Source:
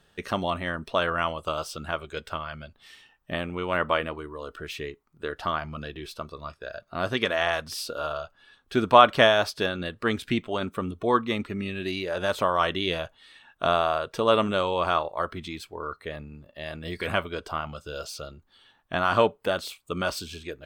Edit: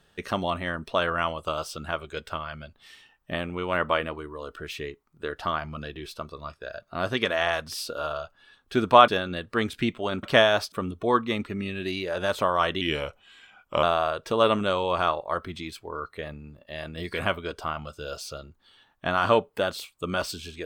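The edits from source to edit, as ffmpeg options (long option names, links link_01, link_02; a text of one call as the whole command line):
ffmpeg -i in.wav -filter_complex "[0:a]asplit=6[link_01][link_02][link_03][link_04][link_05][link_06];[link_01]atrim=end=9.082[link_07];[link_02]atrim=start=9.568:end=10.722[link_08];[link_03]atrim=start=9.078:end=9.572[link_09];[link_04]atrim=start=10.718:end=12.814[link_10];[link_05]atrim=start=12.81:end=13.71,asetpts=PTS-STARTPTS,asetrate=38808,aresample=44100,atrim=end_sample=45102,asetpts=PTS-STARTPTS[link_11];[link_06]atrim=start=13.706[link_12];[link_07][link_08]acrossfade=duration=0.004:curve1=hsin:curve2=hsin[link_13];[link_13][link_09]acrossfade=duration=0.004:curve1=hsin:curve2=hsin[link_14];[link_14][link_10]acrossfade=duration=0.004:curve1=hsin:curve2=hsin[link_15];[link_15][link_11]acrossfade=duration=0.004:curve1=hsin:curve2=hsin[link_16];[link_16][link_12]acrossfade=duration=0.004:curve1=hsin:curve2=hsin" out.wav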